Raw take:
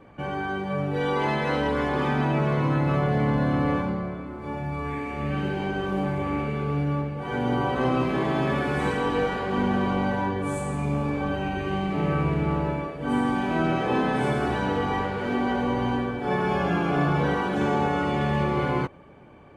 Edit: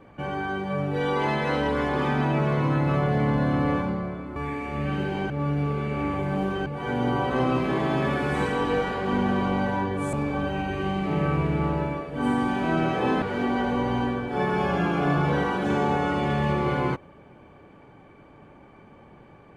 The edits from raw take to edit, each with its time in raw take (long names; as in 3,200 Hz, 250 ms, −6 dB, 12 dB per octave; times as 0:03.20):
0:04.36–0:04.81: remove
0:05.75–0:07.11: reverse
0:10.58–0:11.00: remove
0:14.09–0:15.13: remove